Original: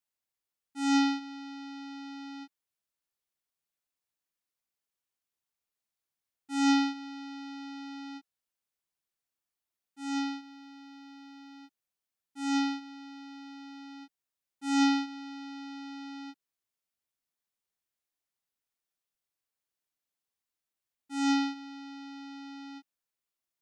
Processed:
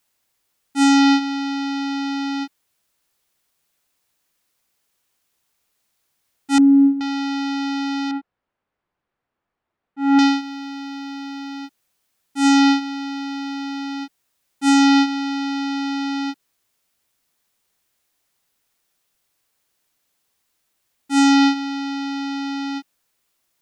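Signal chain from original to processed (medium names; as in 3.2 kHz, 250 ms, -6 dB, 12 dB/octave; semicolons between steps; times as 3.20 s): 6.58–7.01 s: spectral contrast enhancement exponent 3.3; 8.11–10.19 s: low-pass 1.5 kHz 12 dB/octave; loudness maximiser +26 dB; trim -7.5 dB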